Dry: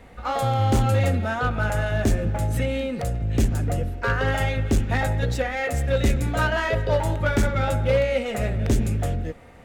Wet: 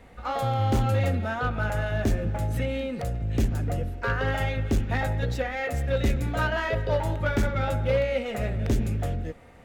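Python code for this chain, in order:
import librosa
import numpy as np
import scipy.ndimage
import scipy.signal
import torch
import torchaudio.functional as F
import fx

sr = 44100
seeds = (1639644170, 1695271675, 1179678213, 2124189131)

y = fx.dynamic_eq(x, sr, hz=8400.0, q=1.2, threshold_db=-50.0, ratio=4.0, max_db=-6)
y = y * 10.0 ** (-3.5 / 20.0)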